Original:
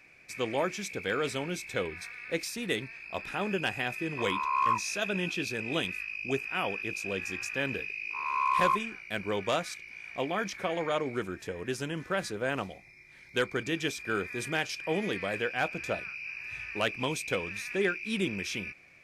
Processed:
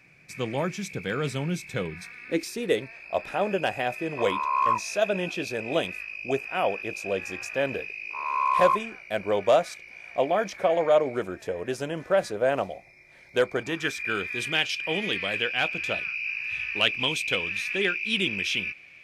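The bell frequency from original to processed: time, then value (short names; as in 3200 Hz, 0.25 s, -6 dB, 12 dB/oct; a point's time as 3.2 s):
bell +13 dB 0.89 oct
1.92 s 150 Hz
2.86 s 620 Hz
13.55 s 620 Hz
14.15 s 3000 Hz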